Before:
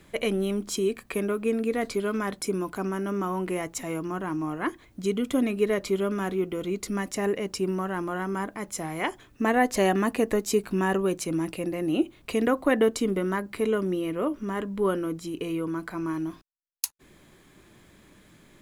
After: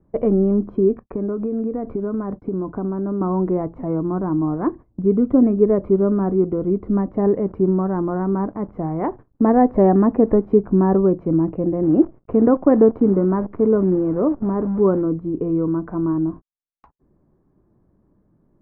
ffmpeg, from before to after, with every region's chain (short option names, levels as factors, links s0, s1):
-filter_complex "[0:a]asettb=1/sr,asplit=3[s0][s1][s2];[s0]atrim=end=0.994[s3];[s1]atrim=start=0.99:end=3.21,asetpts=PTS-STARTPTS,afade=t=in:d=0.004:c=qsin,afade=t=out:st=2.216:d=0.004:c=qsin,acompressor=threshold=0.0355:ratio=10:attack=3.2:release=140:knee=1:detection=peak,agate=range=0.0224:threshold=0.00631:ratio=3:release=100:detection=peak[s4];[s2]atrim=start=3.206[s5];[s3][s4]acrossfade=d=0.004:c1=hsin:c2=qsin[s6];[s6][s5]acrossfade=d=0.004:c1=qsin:c2=hsin,asettb=1/sr,asplit=3[s7][s8][s9];[s7]atrim=end=7.194[s10];[s8]atrim=start=7.19:end=10.6,asetpts=PTS-STARTPTS,afade=t=in:d=0.004:c=qsin,afade=t=out:st=3.406:d=0.004:c=qsin,acrusher=bits=9:dc=4:mix=0:aa=0.000001,equalizer=f=2000:t=o:w=0.41:g=3[s11];[s9]atrim=start=10.596[s12];[s10][s11]acrossfade=d=0.004:c1=hsin:c2=qsin[s13];[s13][s12]acrossfade=d=0.004:c1=qsin:c2=hsin,asettb=1/sr,asplit=3[s14][s15][s16];[s14]atrim=end=11.834[s17];[s15]atrim=start=11.83:end=15.02,asetpts=PTS-STARTPTS,afade=t=in:d=0.004:c=qsin,afade=t=out:st=3.186:d=0.004:c=qsin,highpass=62,acrusher=bits=7:dc=4:mix=0:aa=0.000001[s18];[s16]atrim=start=15.016[s19];[s17][s18]acrossfade=d=0.004:c1=hsin:c2=qsin[s20];[s20][s19]acrossfade=d=0.004:c1=qsin:c2=hsin,agate=range=0.178:threshold=0.00891:ratio=16:detection=peak,lowpass=f=1100:w=0.5412,lowpass=f=1100:w=1.3066,lowshelf=f=430:g=9,volume=1.58"